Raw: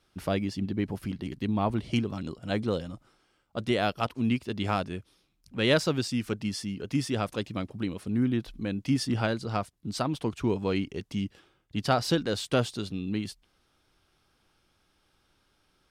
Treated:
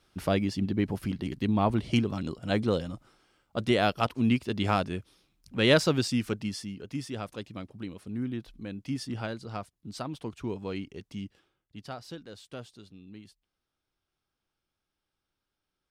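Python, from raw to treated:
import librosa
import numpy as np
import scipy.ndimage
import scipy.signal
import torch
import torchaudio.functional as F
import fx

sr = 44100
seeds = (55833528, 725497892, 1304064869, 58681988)

y = fx.gain(x, sr, db=fx.line((6.14, 2.0), (6.94, -7.0), (11.24, -7.0), (12.01, -16.5)))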